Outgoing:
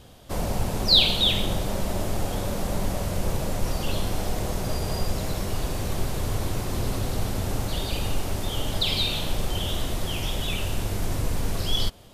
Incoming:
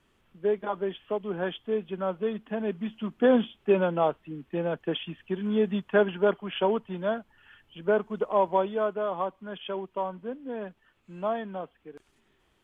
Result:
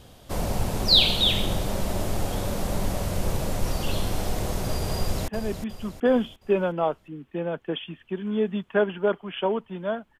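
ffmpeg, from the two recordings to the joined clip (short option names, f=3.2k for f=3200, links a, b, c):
-filter_complex "[0:a]apad=whole_dur=10.19,atrim=end=10.19,atrim=end=5.282[a];[1:a]atrim=start=2.468:end=7.38[b];[a][b]acrossfade=d=0.004:c1=hsin:c2=hsin,asplit=2[c][d];[d]afade=t=in:st=4.97:d=0.01,afade=t=out:st=5.28:d=0.01,aecho=0:1:360|720|1080|1440|1800:0.398107|0.179148|0.0806167|0.0362775|0.0163249[e];[c][e]amix=inputs=2:normalize=0"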